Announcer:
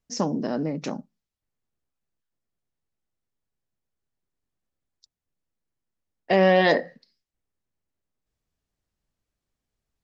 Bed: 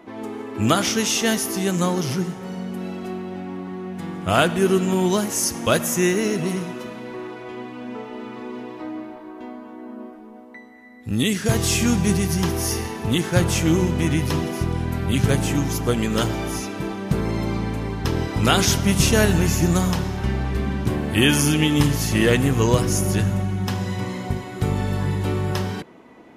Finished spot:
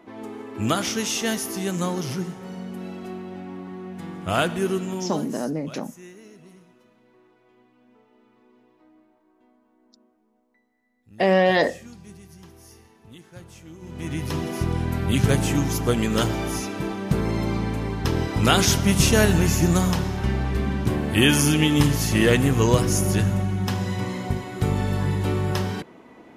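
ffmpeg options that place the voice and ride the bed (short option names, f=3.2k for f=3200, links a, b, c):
-filter_complex "[0:a]adelay=4900,volume=0dB[a];[1:a]volume=20dB,afade=t=out:st=4.52:d=0.95:silence=0.0944061,afade=t=in:st=13.8:d=0.91:silence=0.0595662[b];[a][b]amix=inputs=2:normalize=0"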